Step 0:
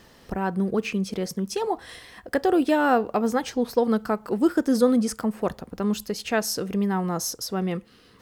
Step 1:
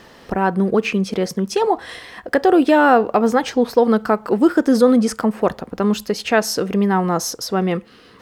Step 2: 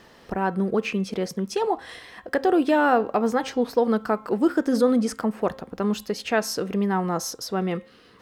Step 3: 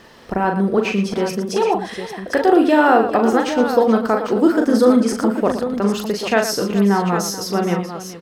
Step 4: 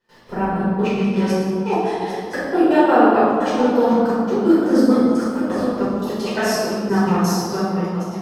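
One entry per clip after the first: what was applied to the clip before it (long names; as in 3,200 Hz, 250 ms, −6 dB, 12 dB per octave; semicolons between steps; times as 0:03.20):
high-shelf EQ 5,100 Hz −10 dB; in parallel at 0 dB: brickwall limiter −16 dBFS, peak gain reduction 9 dB; on the sum: low-shelf EQ 180 Hz −9 dB; level +4.5 dB
hum removal 266.3 Hz, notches 15; level −6.5 dB
multi-tap delay 40/115/427/801 ms −5.5/−10.5/−14.5/−9.5 dB; level +5 dB
gate pattern ".x.xx.x..x" 172 BPM −24 dB; convolution reverb RT60 2.0 s, pre-delay 7 ms, DRR −10.5 dB; level −12 dB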